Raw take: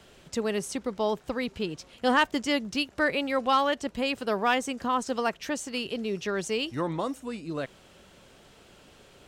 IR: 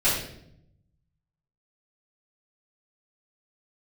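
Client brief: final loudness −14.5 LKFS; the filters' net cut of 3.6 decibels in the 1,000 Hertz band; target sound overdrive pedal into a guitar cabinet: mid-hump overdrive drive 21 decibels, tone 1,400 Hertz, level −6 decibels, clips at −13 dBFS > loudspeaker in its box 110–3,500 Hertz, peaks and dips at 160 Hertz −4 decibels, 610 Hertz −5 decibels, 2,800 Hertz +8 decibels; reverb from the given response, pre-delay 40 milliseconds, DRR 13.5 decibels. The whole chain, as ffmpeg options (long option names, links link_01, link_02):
-filter_complex "[0:a]equalizer=frequency=1000:width_type=o:gain=-4,asplit=2[link_01][link_02];[1:a]atrim=start_sample=2205,adelay=40[link_03];[link_02][link_03]afir=irnorm=-1:irlink=0,volume=-28dB[link_04];[link_01][link_04]amix=inputs=2:normalize=0,asplit=2[link_05][link_06];[link_06]highpass=frequency=720:poles=1,volume=21dB,asoftclip=type=tanh:threshold=-13dB[link_07];[link_05][link_07]amix=inputs=2:normalize=0,lowpass=frequency=1400:poles=1,volume=-6dB,highpass=110,equalizer=frequency=160:width_type=q:width=4:gain=-4,equalizer=frequency=610:width_type=q:width=4:gain=-5,equalizer=frequency=2800:width_type=q:width=4:gain=8,lowpass=frequency=3500:width=0.5412,lowpass=frequency=3500:width=1.3066,volume=11dB"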